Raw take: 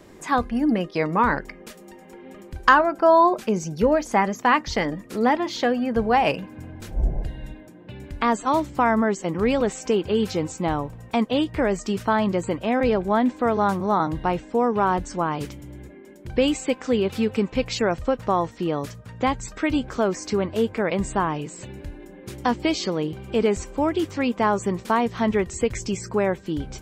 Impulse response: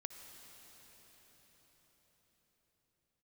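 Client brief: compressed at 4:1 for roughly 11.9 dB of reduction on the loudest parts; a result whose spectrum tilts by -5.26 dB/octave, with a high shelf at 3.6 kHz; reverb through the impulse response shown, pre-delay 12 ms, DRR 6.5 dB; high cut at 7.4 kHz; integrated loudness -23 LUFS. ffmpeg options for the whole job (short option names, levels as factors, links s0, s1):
-filter_complex "[0:a]lowpass=7400,highshelf=f=3600:g=-6,acompressor=threshold=0.0501:ratio=4,asplit=2[s0][s1];[1:a]atrim=start_sample=2205,adelay=12[s2];[s1][s2]afir=irnorm=-1:irlink=0,volume=0.708[s3];[s0][s3]amix=inputs=2:normalize=0,volume=2.24"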